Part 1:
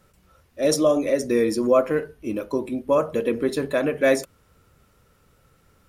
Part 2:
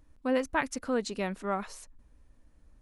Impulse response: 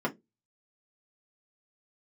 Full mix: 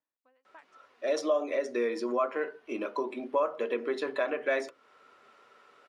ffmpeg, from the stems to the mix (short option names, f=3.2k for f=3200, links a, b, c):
-filter_complex "[0:a]dynaudnorm=f=120:g=7:m=5dB,adelay=450,volume=-0.5dB,asplit=2[a][b];[b]volume=-15dB[c];[1:a]acompressor=threshold=-29dB:ratio=6,aeval=exprs='val(0)*pow(10,-24*if(lt(mod(1.9*n/s,1),2*abs(1.9)/1000),1-mod(1.9*n/s,1)/(2*abs(1.9)/1000),(mod(1.9*n/s,1)-2*abs(1.9)/1000)/(1-2*abs(1.9)/1000))/20)':c=same,volume=-16dB[d];[2:a]atrim=start_sample=2205[e];[c][e]afir=irnorm=-1:irlink=0[f];[a][d][f]amix=inputs=3:normalize=0,highpass=600,lowpass=3.7k,acompressor=threshold=-34dB:ratio=2"